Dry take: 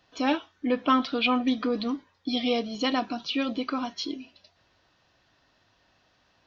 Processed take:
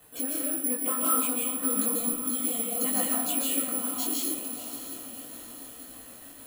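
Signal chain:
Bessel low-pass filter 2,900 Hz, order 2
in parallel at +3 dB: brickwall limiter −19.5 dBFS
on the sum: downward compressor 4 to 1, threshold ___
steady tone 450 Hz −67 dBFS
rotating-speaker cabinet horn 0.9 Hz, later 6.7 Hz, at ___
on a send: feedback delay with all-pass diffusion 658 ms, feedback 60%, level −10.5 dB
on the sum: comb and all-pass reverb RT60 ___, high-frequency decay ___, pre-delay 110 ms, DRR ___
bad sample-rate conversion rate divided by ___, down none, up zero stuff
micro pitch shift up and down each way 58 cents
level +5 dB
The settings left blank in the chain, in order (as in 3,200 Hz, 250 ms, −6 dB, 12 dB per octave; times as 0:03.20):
−37 dBFS, 0:04.00, 0.78 s, 0.85×, −2.5 dB, 4×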